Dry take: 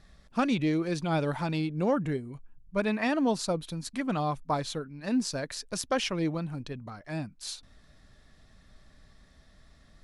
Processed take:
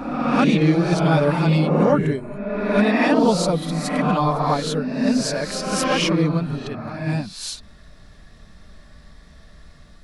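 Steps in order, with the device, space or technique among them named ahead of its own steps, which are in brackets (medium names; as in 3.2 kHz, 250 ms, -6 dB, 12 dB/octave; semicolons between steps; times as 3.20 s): reverse reverb (reverse; reverberation RT60 1.5 s, pre-delay 3 ms, DRR -2 dB; reverse); trim +6.5 dB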